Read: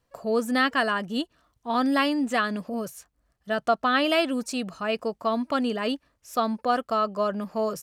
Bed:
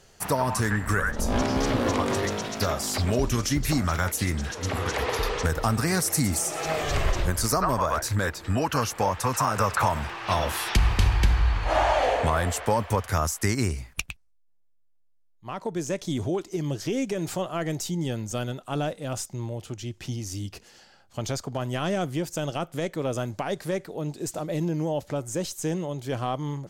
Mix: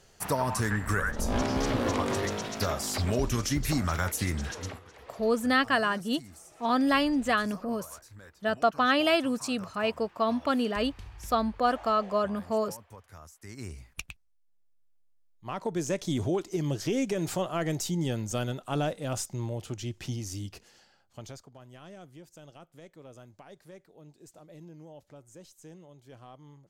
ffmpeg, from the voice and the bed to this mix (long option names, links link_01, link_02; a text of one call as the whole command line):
ffmpeg -i stem1.wav -i stem2.wav -filter_complex "[0:a]adelay=4950,volume=-1.5dB[link_01];[1:a]volume=20dB,afade=type=out:start_time=4.55:duration=0.25:silence=0.0891251,afade=type=in:start_time=13.43:duration=1.41:silence=0.0668344,afade=type=out:start_time=19.9:duration=1.61:silence=0.1[link_02];[link_01][link_02]amix=inputs=2:normalize=0" out.wav